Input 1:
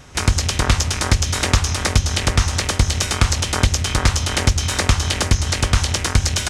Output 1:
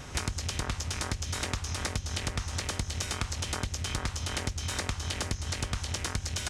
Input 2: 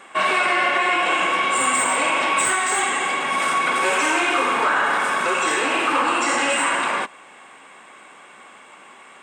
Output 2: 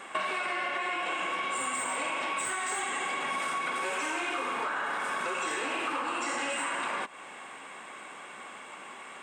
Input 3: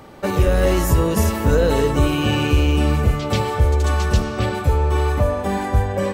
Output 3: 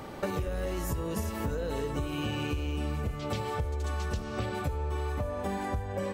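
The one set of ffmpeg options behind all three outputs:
-af "acompressor=threshold=0.0355:ratio=12"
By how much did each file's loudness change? -14.5 LU, -12.0 LU, -14.5 LU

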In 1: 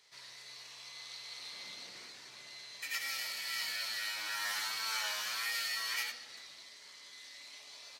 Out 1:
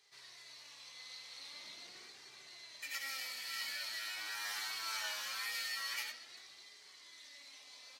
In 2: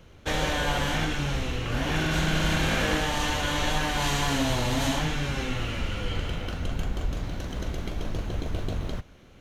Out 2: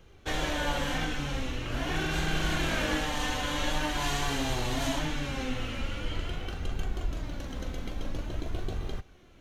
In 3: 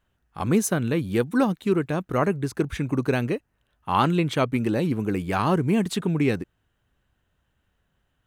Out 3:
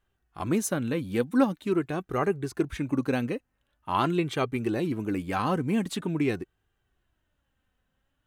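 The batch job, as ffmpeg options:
-af "flanger=delay=2.5:depth=1.4:regen=49:speed=0.45:shape=sinusoidal"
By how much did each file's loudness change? -4.0 LU, -4.5 LU, -4.0 LU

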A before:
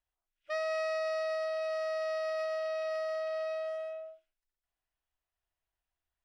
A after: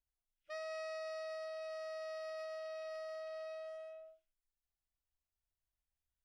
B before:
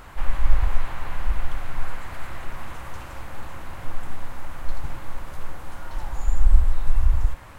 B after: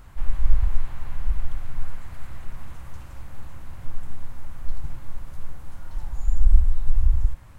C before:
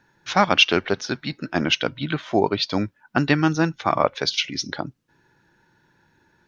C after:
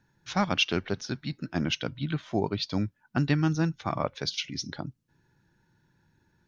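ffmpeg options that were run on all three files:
-af "bass=f=250:g=11,treble=f=4000:g=5,volume=0.282"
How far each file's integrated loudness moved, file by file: -10.5 LU, +2.0 LU, -8.0 LU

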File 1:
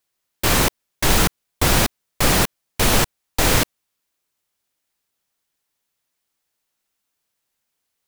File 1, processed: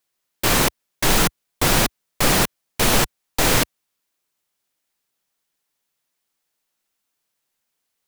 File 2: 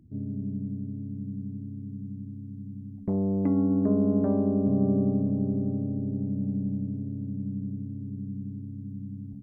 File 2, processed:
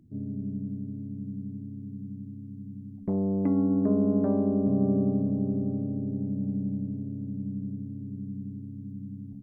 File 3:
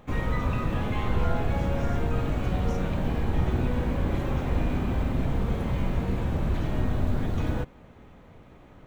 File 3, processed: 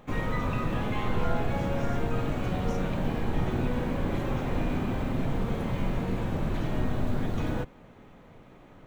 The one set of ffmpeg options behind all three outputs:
-af "equalizer=f=61:t=o:w=0.78:g=-12.5"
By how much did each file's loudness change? -0.5 LU, -0.5 LU, -2.0 LU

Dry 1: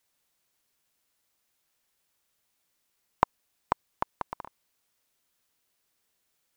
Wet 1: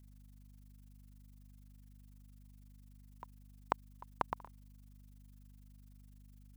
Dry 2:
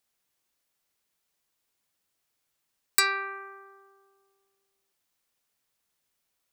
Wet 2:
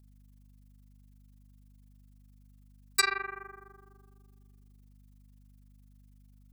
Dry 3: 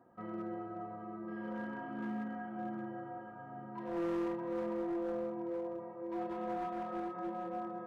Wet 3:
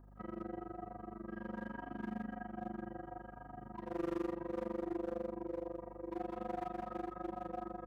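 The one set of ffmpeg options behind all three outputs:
-af "crystalizer=i=0.5:c=0,tremolo=f=24:d=0.974,aeval=exprs='val(0)+0.00126*(sin(2*PI*50*n/s)+sin(2*PI*2*50*n/s)/2+sin(2*PI*3*50*n/s)/3+sin(2*PI*4*50*n/s)/4+sin(2*PI*5*50*n/s)/5)':c=same,volume=1.12"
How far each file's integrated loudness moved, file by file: -10.0 LU, -4.0 LU, -3.0 LU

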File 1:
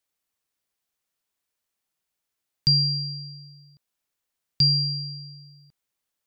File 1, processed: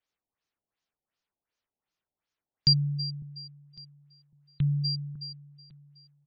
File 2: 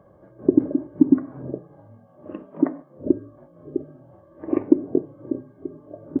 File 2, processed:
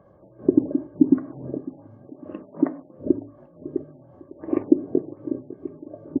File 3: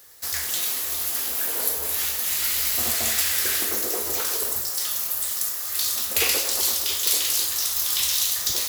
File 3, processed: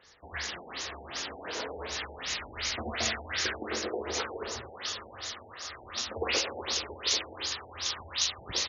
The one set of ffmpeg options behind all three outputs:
-af "aecho=1:1:553|1106|1659:0.15|0.0494|0.0163,afftfilt=real='re*lt(b*sr/1024,890*pow(7200/890,0.5+0.5*sin(2*PI*2.7*pts/sr)))':imag='im*lt(b*sr/1024,890*pow(7200/890,0.5+0.5*sin(2*PI*2.7*pts/sr)))':win_size=1024:overlap=0.75,volume=0.891"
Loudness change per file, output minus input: -6.0 LU, -1.0 LU, -11.5 LU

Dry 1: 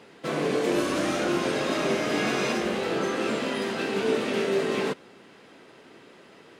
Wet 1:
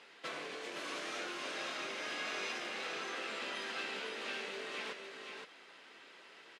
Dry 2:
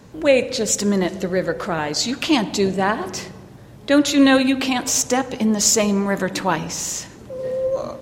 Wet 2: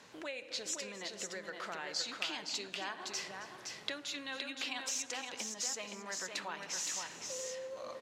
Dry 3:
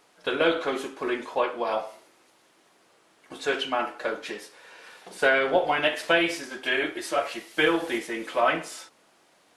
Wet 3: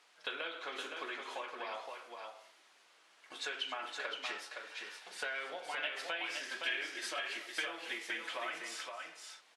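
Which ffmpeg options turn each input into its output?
-af "acompressor=threshold=0.0316:ratio=12,bandpass=f=3000:t=q:w=0.57:csg=0,aecho=1:1:271|517:0.15|0.562,volume=0.841"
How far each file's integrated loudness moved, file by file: -14.0 LU, -20.0 LU, -14.0 LU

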